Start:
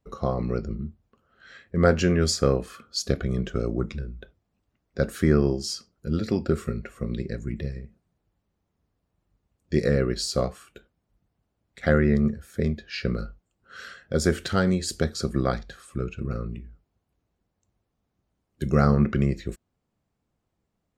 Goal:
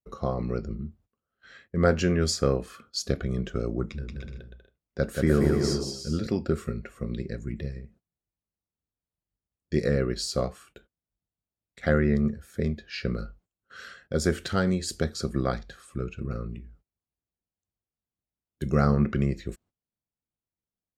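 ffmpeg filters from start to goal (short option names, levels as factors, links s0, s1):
-filter_complex "[0:a]agate=range=0.141:threshold=0.00224:ratio=16:detection=peak,asettb=1/sr,asplit=3[s0][s1][s2];[s0]atrim=end=3.854[s3];[s1]atrim=start=3.85:end=6.27,asetpts=PTS-STARTPTS,afade=t=in:d=0.004:c=qsin,afade=t=out:st=2.416:d=0.004:c=qsin,aecho=1:1:180|297|373|422.5|454.6:0.631|0.398|0.251|0.158|0.1,atrim=end_sample=106722[s4];[s2]atrim=start=6.266[s5];[s3][s4]acrossfade=d=0.004:c1=hsin:c2=qsin[s6];[s6][s5]acrossfade=d=0.004:c1=qsin:c2=hsin,volume=0.75"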